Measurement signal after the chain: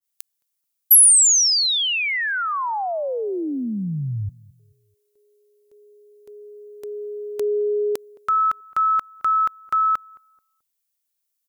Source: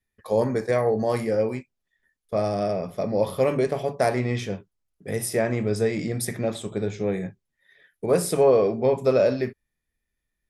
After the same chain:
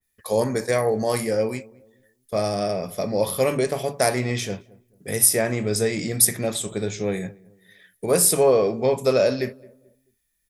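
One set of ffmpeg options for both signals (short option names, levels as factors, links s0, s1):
-filter_complex "[0:a]crystalizer=i=4:c=0,asplit=2[s0][s1];[s1]adelay=217,lowpass=f=880:p=1,volume=0.0794,asplit=2[s2][s3];[s3]adelay=217,lowpass=f=880:p=1,volume=0.37,asplit=2[s4][s5];[s5]adelay=217,lowpass=f=880:p=1,volume=0.37[s6];[s0][s2][s4][s6]amix=inputs=4:normalize=0,adynamicequalizer=threshold=0.0282:dfrequency=2000:dqfactor=0.7:tfrequency=2000:tqfactor=0.7:attack=5:release=100:ratio=0.375:range=2:mode=cutabove:tftype=highshelf"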